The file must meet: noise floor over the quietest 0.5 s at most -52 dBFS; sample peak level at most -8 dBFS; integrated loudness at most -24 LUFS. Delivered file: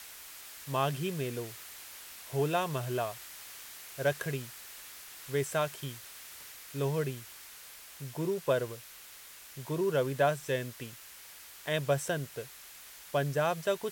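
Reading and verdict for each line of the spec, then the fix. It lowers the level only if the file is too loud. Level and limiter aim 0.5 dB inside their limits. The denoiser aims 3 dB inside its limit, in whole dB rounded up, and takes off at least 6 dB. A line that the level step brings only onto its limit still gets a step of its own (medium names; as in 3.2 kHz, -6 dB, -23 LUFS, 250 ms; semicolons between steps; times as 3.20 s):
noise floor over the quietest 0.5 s -51 dBFS: fail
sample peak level -15.0 dBFS: pass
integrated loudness -34.0 LUFS: pass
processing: noise reduction 6 dB, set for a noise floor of -51 dBFS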